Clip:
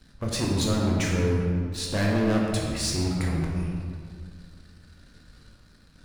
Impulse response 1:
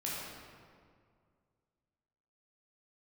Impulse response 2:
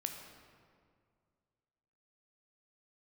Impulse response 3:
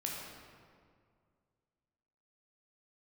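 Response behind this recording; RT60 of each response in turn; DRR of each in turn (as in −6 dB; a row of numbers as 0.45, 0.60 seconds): 3; 2.1, 2.1, 2.1 seconds; −6.5, 3.5, −2.5 decibels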